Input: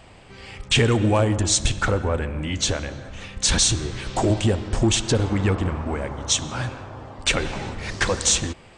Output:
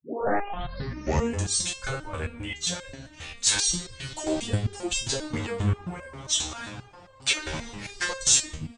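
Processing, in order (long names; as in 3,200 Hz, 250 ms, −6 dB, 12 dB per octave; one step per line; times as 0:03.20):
turntable start at the beginning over 1.44 s
high-shelf EQ 2,300 Hz +8.5 dB
multiband delay without the direct sound highs, lows 190 ms, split 290 Hz
step-sequenced resonator 7.5 Hz 78–530 Hz
level +3 dB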